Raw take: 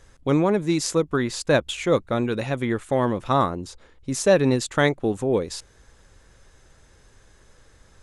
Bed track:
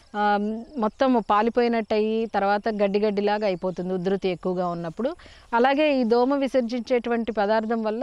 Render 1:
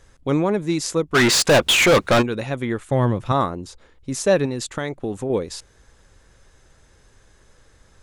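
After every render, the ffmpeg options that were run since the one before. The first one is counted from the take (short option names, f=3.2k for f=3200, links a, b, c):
-filter_complex "[0:a]asplit=3[a][b][c];[a]afade=t=out:st=1.14:d=0.02[d];[b]asplit=2[e][f];[f]highpass=f=720:p=1,volume=32dB,asoftclip=type=tanh:threshold=-7.5dB[g];[e][g]amix=inputs=2:normalize=0,lowpass=f=6.2k:p=1,volume=-6dB,afade=t=in:st=1.14:d=0.02,afade=t=out:st=2.21:d=0.02[h];[c]afade=t=in:st=2.21:d=0.02[i];[d][h][i]amix=inputs=3:normalize=0,asettb=1/sr,asplit=3[j][k][l];[j]atrim=end=2.914[m];[k]atrim=start=2.91:end=3.32,asetpts=PTS-STARTPTS,afade=t=in:d=0.004:c=qsin,afade=t=out:st=0.406:d=0.004:c=qsin,equalizer=f=120:w=1.5:g=10[n];[l]atrim=start=3.316[o];[m][n]acrossfade=d=0.004:c1=hsin:c2=qsin[p];[p][o]acrossfade=d=0.004:c1=qsin:c2=hsin,asettb=1/sr,asplit=3[q][r][s];[q]atrim=end=4.454[t];[r]atrim=start=4.45:end=5.3,asetpts=PTS-STARTPTS,afade=t=in:d=0.004:c=qsin,afade=t=out:st=0.846:d=0.004:c=qsin,acompressor=threshold=-20dB:ratio=12:attack=3.2:release=140:knee=1:detection=peak[u];[s]atrim=start=5.296[v];[t][u]acrossfade=d=0.004:c1=hsin:c2=qsin[w];[w][v]acrossfade=d=0.004:c1=qsin:c2=hsin"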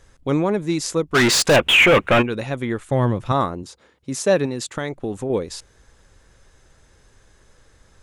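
-filter_complex "[0:a]asettb=1/sr,asplit=3[a][b][c];[a]atrim=end=1.564[d];[b]atrim=start=1.56:end=2.3,asetpts=PTS-STARTPTS,afade=t=in:d=0.004:c=qsin,afade=t=out:st=0.736:d=0.004:c=qsin,highshelf=f=3.5k:t=q:w=3:g=-7.5[e];[c]atrim=start=2.296[f];[d][e]acrossfade=d=0.004:c1=hsin:c2=qsin[g];[g][f]acrossfade=d=0.004:c1=qsin:c2=hsin,asettb=1/sr,asplit=3[h][i][j];[h]atrim=end=3.634[k];[i]atrim=start=3.63:end=4.76,asetpts=PTS-STARTPTS,afade=t=in:d=0.004:c=qsin,afade=t=out:st=1.126:d=0.004:c=qsin,highpass=110[l];[j]atrim=start=4.756[m];[k][l]acrossfade=d=0.004:c1=hsin:c2=qsin[n];[n][m]acrossfade=d=0.004:c1=qsin:c2=hsin"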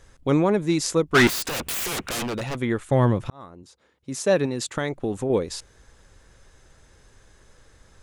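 -filter_complex "[0:a]asettb=1/sr,asplit=3[a][b][c];[a]atrim=end=1.274[d];[b]atrim=start=1.27:end=2.58,asetpts=PTS-STARTPTS,afade=t=in:d=0.004:c=qsin,afade=t=out:st=1.306:d=0.004:c=qsin,aeval=exprs='0.0708*(abs(mod(val(0)/0.0708+3,4)-2)-1)':c=same[e];[c]atrim=start=2.576[f];[d][e]acrossfade=d=0.004:c1=hsin:c2=qsin[g];[g][f]acrossfade=d=0.004:c1=qsin:c2=hsin,asplit=2[h][i];[h]atrim=end=3.3,asetpts=PTS-STARTPTS,afade=t=out:st=3.296:d=0.004:c=hsin[j];[i]atrim=start=3.3,asetpts=PTS-STARTPTS,afade=t=in:d=1.4[k];[j][k]concat=n=2:v=0:a=1"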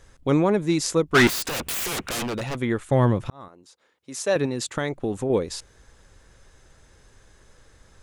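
-filter_complex "[0:a]asettb=1/sr,asplit=3[a][b][c];[a]atrim=end=3.484[d];[b]atrim=start=3.48:end=4.36,asetpts=PTS-STARTPTS,afade=t=in:d=0.004:c=qsin,afade=t=out:st=0.876:d=0.004:c=qsin,highpass=f=530:p=1[e];[c]atrim=start=4.356[f];[d][e]acrossfade=d=0.004:c1=hsin:c2=qsin[g];[g][f]acrossfade=d=0.004:c1=qsin:c2=hsin"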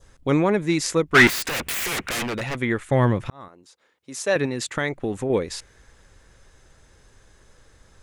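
-af "adynamicequalizer=threshold=0.00501:dfrequency=2000:dqfactor=1.6:tfrequency=2000:tqfactor=1.6:attack=5:release=100:ratio=0.375:range=3.5:mode=boostabove:tftype=bell"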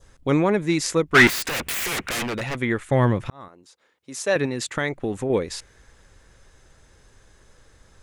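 -af anull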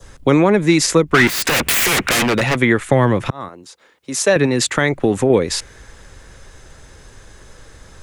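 -filter_complex "[0:a]acrossover=split=99|280[a][b][c];[a]acompressor=threshold=-46dB:ratio=4[d];[b]acompressor=threshold=-30dB:ratio=4[e];[c]acompressor=threshold=-24dB:ratio=4[f];[d][e][f]amix=inputs=3:normalize=0,alimiter=level_in=12dB:limit=-1dB:release=50:level=0:latency=1"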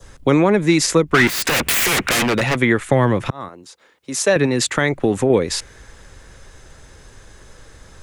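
-af "volume=-1.5dB"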